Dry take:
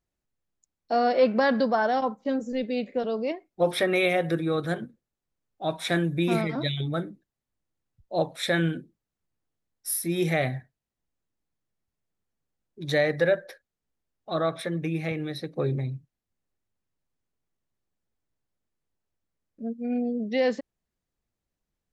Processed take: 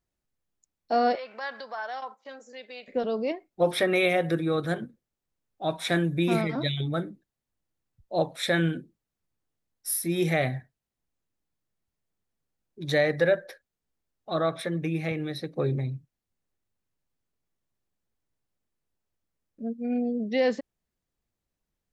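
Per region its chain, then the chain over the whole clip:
0:01.15–0:02.88: high-shelf EQ 7,100 Hz −5.5 dB + downward compressor 4 to 1, threshold −26 dBFS + high-pass filter 940 Hz
whole clip: no processing

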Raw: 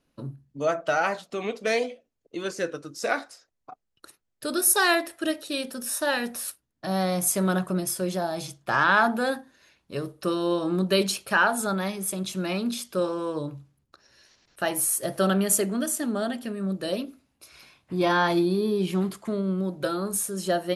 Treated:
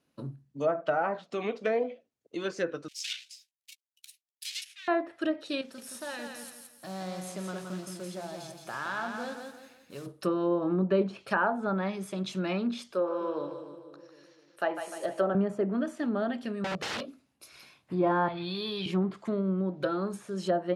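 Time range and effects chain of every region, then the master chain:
0:02.88–0:04.88: each half-wave held at its own peak + Butterworth high-pass 2,500 Hz + double-tracking delay 14 ms −12 dB
0:05.61–0:10.06: downward compressor 1.5 to 1, threshold −53 dBFS + noise that follows the level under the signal 12 dB + repeating echo 170 ms, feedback 36%, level −5.5 dB
0:12.92–0:15.35: high-pass filter 490 Hz + spectral tilt −2.5 dB per octave + echo with a time of its own for lows and highs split 450 Hz, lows 254 ms, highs 150 ms, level −8.5 dB
0:16.64–0:17.06: comb filter 1.7 ms, depth 97% + wrap-around overflow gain 25 dB
0:18.28–0:18.86: drawn EQ curve 120 Hz 0 dB, 280 Hz −23 dB, 510 Hz −11 dB, 2,300 Hz +2 dB, 3,600 Hz +7 dB, 7,800 Hz −12 dB, 12,000 Hz +1 dB + envelope flattener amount 70%
whole clip: high-pass filter 100 Hz; treble cut that deepens with the level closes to 1,100 Hz, closed at −21 dBFS; level −2 dB

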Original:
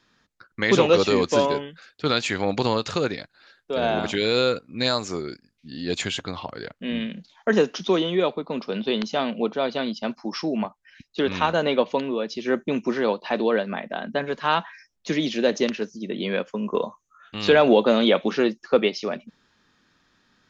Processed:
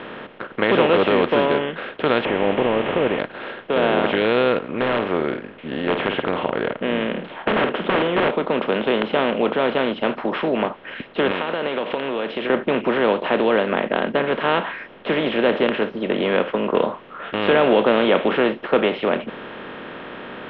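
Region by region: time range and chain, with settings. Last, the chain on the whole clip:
0:02.25–0:03.19: linear delta modulator 16 kbit/s, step −31.5 dBFS + parametric band 1,400 Hz −13 dB 0.72 octaves
0:04.68–0:08.31: wrap-around overflow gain 16 dB + high-frequency loss of the air 300 metres + double-tracking delay 50 ms −14 dB
0:11.31–0:12.50: high-pass filter 370 Hz 6 dB per octave + downward compressor 10 to 1, threshold −34 dBFS + high-shelf EQ 4,000 Hz +12 dB
whole clip: compressor on every frequency bin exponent 0.4; elliptic low-pass filter 3,100 Hz, stop band 70 dB; low-shelf EQ 87 Hz −7.5 dB; level −2.5 dB

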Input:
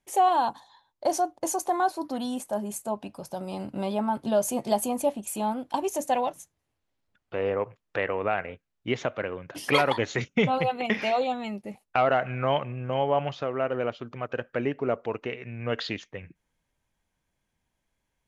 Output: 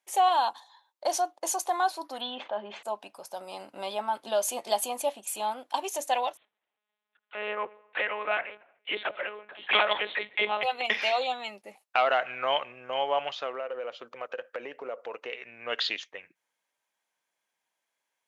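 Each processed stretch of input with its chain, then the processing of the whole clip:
0:02.21–0:02.83: elliptic low-pass filter 3,500 Hz, stop band 70 dB + envelope flattener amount 50%
0:06.37–0:10.63: all-pass dispersion lows, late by 55 ms, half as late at 360 Hz + repeating echo 76 ms, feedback 60%, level −22 dB + one-pitch LPC vocoder at 8 kHz 210 Hz
0:13.54–0:15.35: parametric band 510 Hz +10.5 dB 0.24 octaves + downward compressor 5 to 1, threshold −27 dBFS
whole clip: dynamic equaliser 3,500 Hz, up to +7 dB, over −48 dBFS, Q 1.3; high-pass filter 630 Hz 12 dB per octave

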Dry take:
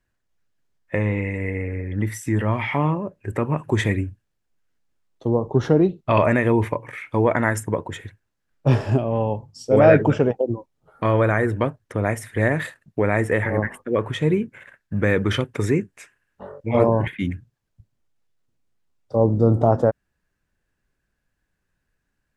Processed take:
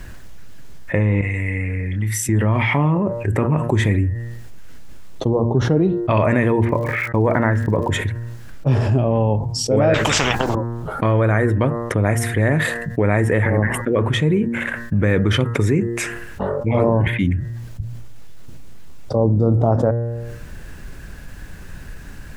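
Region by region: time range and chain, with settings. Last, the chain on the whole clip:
0:01.21–0:02.29: guitar amp tone stack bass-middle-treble 5-5-5 + double-tracking delay 28 ms −7.5 dB
0:06.64–0:07.88: low-pass filter 2,100 Hz + surface crackle 170 per second −41 dBFS + noise gate −44 dBFS, range −40 dB
0:09.94–0:10.55: downward compressor 1.5 to 1, threshold −24 dBFS + every bin compressed towards the loudest bin 10 to 1
whole clip: low-shelf EQ 200 Hz +7.5 dB; hum removal 117.1 Hz, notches 17; envelope flattener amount 70%; level −5 dB

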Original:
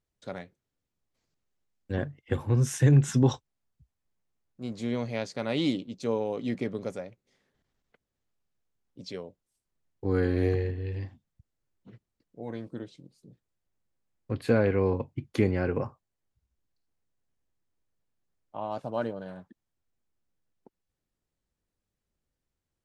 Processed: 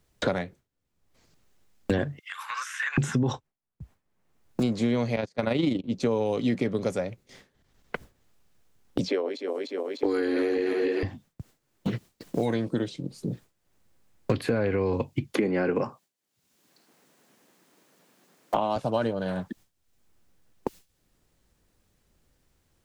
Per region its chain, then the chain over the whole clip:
0:02.19–0:02.98: elliptic high-pass filter 1,200 Hz, stop band 80 dB + downward compressor 10 to 1, threshold −49 dBFS
0:05.16–0:05.84: noise gate −35 dBFS, range −21 dB + amplitude modulation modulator 25 Hz, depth 40%
0:09.08–0:11.03: feedback delay that plays each chunk backwards 150 ms, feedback 69%, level −9 dB + Butterworth high-pass 260 Hz 48 dB per octave + downward compressor, threshold −31 dBFS
0:15.37–0:18.76: high-pass filter 190 Hz 24 dB per octave + multiband upward and downward compressor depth 40%
whole clip: brickwall limiter −20.5 dBFS; noise gate with hold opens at −59 dBFS; multiband upward and downward compressor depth 100%; level +7.5 dB

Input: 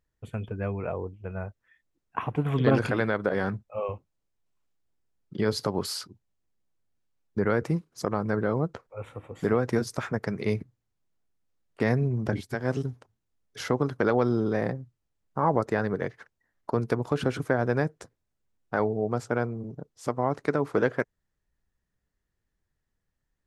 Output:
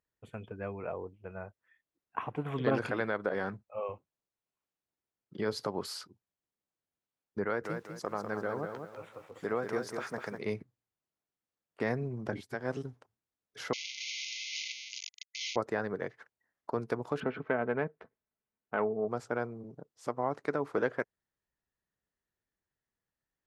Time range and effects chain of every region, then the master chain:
0:07.44–0:10.38: low-shelf EQ 350 Hz −6 dB + feedback echo at a low word length 198 ms, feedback 35%, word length 9 bits, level −6 dB
0:13.73–0:15.56: sign of each sample alone + linear-phase brick-wall band-pass 2,000–6,800 Hz + high-shelf EQ 2,900 Hz +9.5 dB
0:17.20–0:19.08: phase distortion by the signal itself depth 0.084 ms + low-pass filter 2,800 Hz 24 dB per octave + comb filter 4.6 ms, depth 37%
whole clip: high-pass filter 700 Hz 6 dB per octave; spectral tilt −2 dB per octave; level −3 dB

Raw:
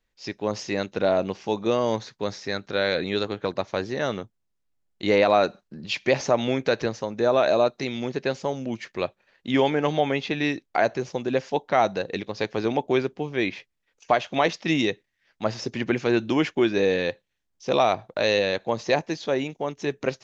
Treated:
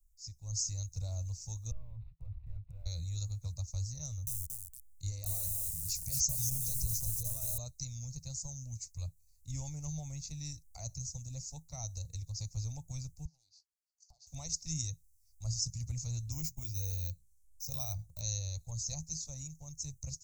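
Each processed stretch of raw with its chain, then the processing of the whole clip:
0:01.71–0:02.86: variable-slope delta modulation 16 kbit/s + downward compressor 4 to 1, threshold −32 dBFS
0:04.04–0:07.58: notch filter 920 Hz, Q 8.6 + downward compressor 8 to 1, threshold −20 dBFS + feedback echo at a low word length 229 ms, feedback 35%, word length 7 bits, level −5.5 dB
0:13.25–0:14.27: downward compressor 12 to 1, threshold −29 dBFS + pair of resonant band-passes 1,900 Hz, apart 2.5 octaves + highs frequency-modulated by the lows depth 0.13 ms
0:16.32–0:18.21: mains-hum notches 60/120/180 Hz + linearly interpolated sample-rate reduction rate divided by 2×
whole clip: inverse Chebyshev band-stop filter 180–3,400 Hz, stop band 50 dB; parametric band 160 Hz +13 dB 0.26 octaves; automatic gain control gain up to 7.5 dB; level +10.5 dB

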